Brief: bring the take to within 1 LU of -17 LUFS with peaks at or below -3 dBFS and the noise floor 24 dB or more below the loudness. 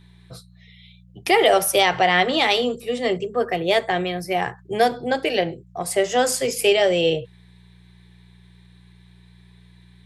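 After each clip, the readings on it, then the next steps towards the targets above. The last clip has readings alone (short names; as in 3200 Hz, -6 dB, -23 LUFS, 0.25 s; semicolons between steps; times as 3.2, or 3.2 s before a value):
hum 60 Hz; harmonics up to 180 Hz; hum level -45 dBFS; loudness -20.5 LUFS; peak -3.5 dBFS; loudness target -17.0 LUFS
-> de-hum 60 Hz, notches 3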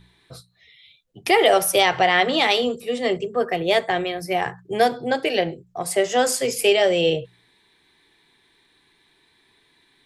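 hum none; loudness -20.5 LUFS; peak -3.5 dBFS; loudness target -17.0 LUFS
-> gain +3.5 dB; limiter -3 dBFS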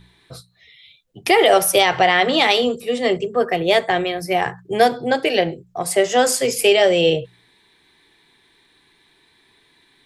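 loudness -17.5 LUFS; peak -3.0 dBFS; noise floor -58 dBFS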